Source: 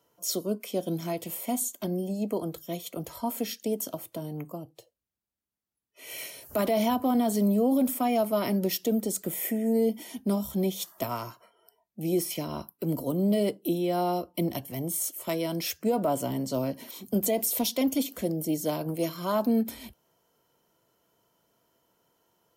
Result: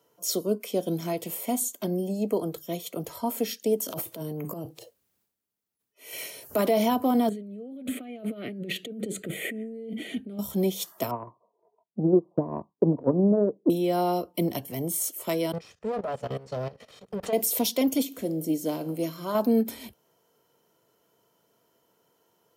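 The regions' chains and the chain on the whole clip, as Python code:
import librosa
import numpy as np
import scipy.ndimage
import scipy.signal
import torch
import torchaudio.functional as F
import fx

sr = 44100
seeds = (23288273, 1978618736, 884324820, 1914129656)

y = fx.chain(x, sr, fx.high_shelf(hz=11000.0, db=5.5),
    fx.transient(attack_db=-10, sustain_db=12),
    fx.clip_hard(threshold_db=-25.5), at=(3.85, 6.13))
y = fx.chain(y, sr, fx.lowpass(hz=5100.0, slope=12),
    fx.over_compress(threshold_db=-36.0, ratio=-1.0),
    fx.fixed_phaser(hz=2300.0, stages=4), at=(7.29, 10.39))
y = fx.chain(y, sr, fx.brickwall_lowpass(high_hz=1200.0),
    fx.transient(attack_db=9, sustain_db=-10), at=(11.11, 13.7))
y = fx.chain(y, sr, fx.lower_of_two(delay_ms=1.6),
    fx.level_steps(step_db=16),
    fx.air_absorb(metres=91.0), at=(15.52, 17.33))
y = fx.chain(y, sr, fx.peak_eq(hz=280.0, db=9.5, octaves=0.32),
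    fx.comb_fb(f0_hz=54.0, decay_s=0.79, harmonics='all', damping=0.0, mix_pct=50), at=(18.05, 19.35))
y = scipy.signal.sosfilt(scipy.signal.butter(2, 94.0, 'highpass', fs=sr, output='sos'), y)
y = fx.peak_eq(y, sr, hz=440.0, db=5.0, octaves=0.32)
y = y * librosa.db_to_amplitude(1.5)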